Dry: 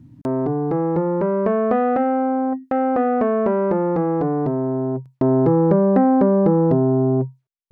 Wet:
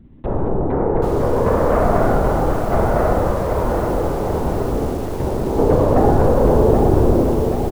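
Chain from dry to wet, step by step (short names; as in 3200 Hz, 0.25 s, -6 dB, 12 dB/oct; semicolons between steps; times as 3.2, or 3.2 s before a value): bell 190 Hz -12 dB 0.64 oct; 3.13–5.58 compressor 10:1, threshold -22 dBFS, peak gain reduction 8.5 dB; feedback echo 0.146 s, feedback 48%, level -14 dB; LPC vocoder at 8 kHz whisper; low shelf 120 Hz +3.5 dB; Schroeder reverb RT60 1.9 s, combs from 26 ms, DRR 3.5 dB; lo-fi delay 0.78 s, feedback 55%, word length 6-bit, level -6 dB; gain +1.5 dB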